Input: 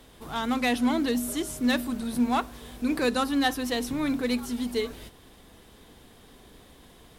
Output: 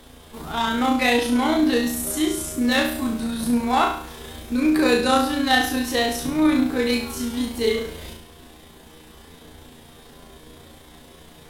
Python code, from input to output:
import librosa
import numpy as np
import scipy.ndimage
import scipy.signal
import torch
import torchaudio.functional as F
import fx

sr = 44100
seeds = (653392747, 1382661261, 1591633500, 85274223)

y = fx.stretch_grains(x, sr, factor=1.6, grain_ms=68.0)
y = fx.room_flutter(y, sr, wall_m=6.1, rt60_s=0.53)
y = y * 10.0 ** (6.0 / 20.0)